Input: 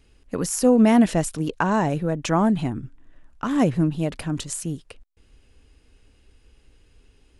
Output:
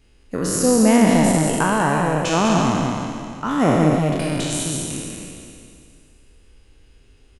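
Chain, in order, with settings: spectral trails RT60 2.39 s; echo 0.197 s -5 dB; gain -1 dB

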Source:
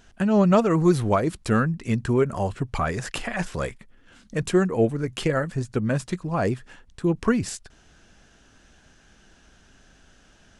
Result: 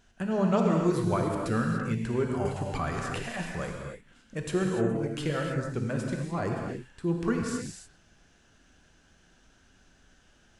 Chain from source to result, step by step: non-linear reverb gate 0.32 s flat, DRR 0.5 dB; 2.45–3.23 three-band squash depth 70%; gain -8.5 dB

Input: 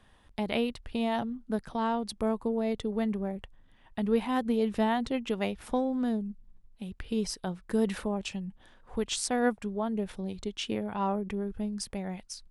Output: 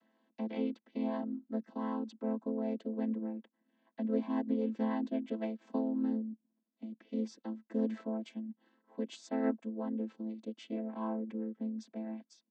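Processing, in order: chord vocoder minor triad, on A3; gain -4.5 dB

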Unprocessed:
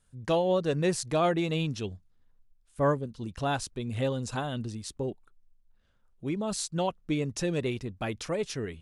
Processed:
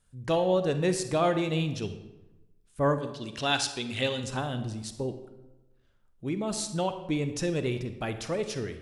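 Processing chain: 2.98–4.24 weighting filter D; on a send: reverb RT60 1.0 s, pre-delay 37 ms, DRR 9 dB

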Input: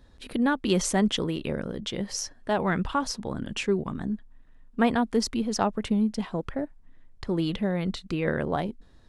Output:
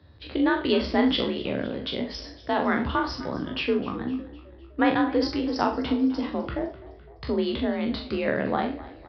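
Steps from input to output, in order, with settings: spectral trails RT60 0.35 s; frequency shift +46 Hz; frequency-shifting echo 0.255 s, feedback 51%, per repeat +41 Hz, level -18 dB; downsampling 11025 Hz; doubler 42 ms -8 dB

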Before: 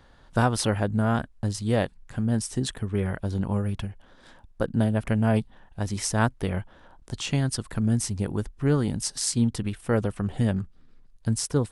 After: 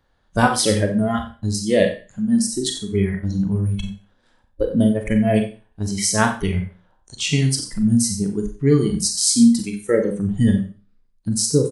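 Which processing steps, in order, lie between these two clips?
echo 90 ms -12 dB; spectral noise reduction 19 dB; Schroeder reverb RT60 0.35 s, combs from 30 ms, DRR 4.5 dB; gain +8 dB

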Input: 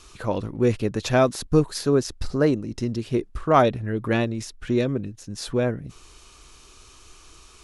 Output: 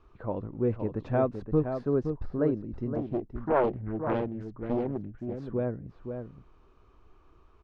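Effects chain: LPF 1100 Hz 12 dB/oct; outdoor echo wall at 89 m, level -7 dB; 2.95–5.42 Doppler distortion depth 0.93 ms; gain -7 dB

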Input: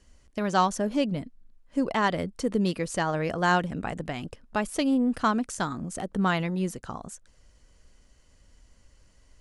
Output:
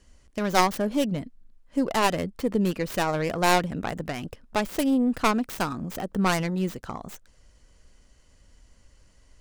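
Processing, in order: tracing distortion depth 0.37 ms; 2.31–2.82 high shelf 8100 Hz -7 dB; gain +1.5 dB

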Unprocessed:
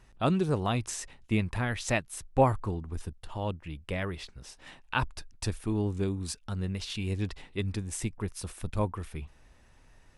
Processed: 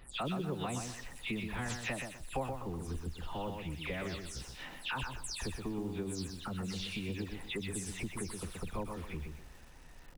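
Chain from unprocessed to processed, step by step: spectral delay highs early, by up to 0.185 s; compressor 4:1, threshold -41 dBFS, peak gain reduction 20 dB; lo-fi delay 0.125 s, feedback 35%, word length 10-bit, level -5 dB; gain +3.5 dB

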